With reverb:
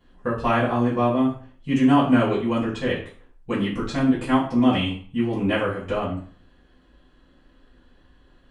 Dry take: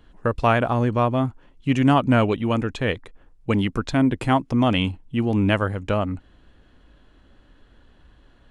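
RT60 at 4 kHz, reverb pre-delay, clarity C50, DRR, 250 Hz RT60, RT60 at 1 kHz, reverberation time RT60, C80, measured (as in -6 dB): 0.40 s, 3 ms, 6.5 dB, -10.0 dB, 0.45 s, 0.45 s, 0.45 s, 11.0 dB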